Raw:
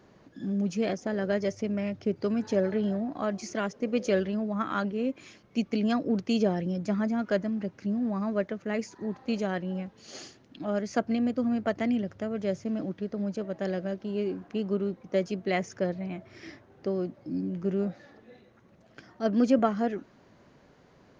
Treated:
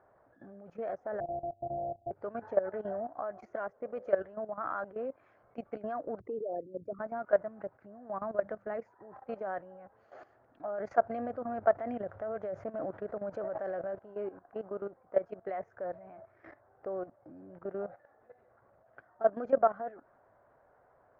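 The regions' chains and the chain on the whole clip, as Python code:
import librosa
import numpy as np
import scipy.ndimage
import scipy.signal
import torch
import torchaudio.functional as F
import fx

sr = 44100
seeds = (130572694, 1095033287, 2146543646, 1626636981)

y = fx.chain(x, sr, fx.sample_sort(block=128),
    fx.steep_lowpass(hz=780.0, slope=96),
    fx.peak_eq(hz=440.0, db=-9.5, octaves=0.77), at=(1.2, 2.11))
y = fx.chain(y, sr, fx.envelope_sharpen(power=3.0),
    fx.peak_eq(hz=1200.0, db=4.0, octaves=0.42),
    fx.band_squash(depth_pct=40), at=(6.2, 6.99))
y = fx.chain(y, sr, fx.bass_treble(bass_db=8, treble_db=12),
    fx.hum_notches(base_hz=50, count=5), at=(8.21, 8.77))
y = fx.chain(y, sr, fx.high_shelf(hz=5600.0, db=7.0),
    fx.env_flatten(amount_pct=50), at=(10.78, 13.99))
y = fx.curve_eq(y, sr, hz=(110.0, 180.0, 330.0, 680.0, 970.0, 1500.0, 2800.0, 5400.0), db=(0, -11, -4, 13, 8, 8, -15, -28))
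y = fx.level_steps(y, sr, step_db=15)
y = y * 10.0 ** (-5.5 / 20.0)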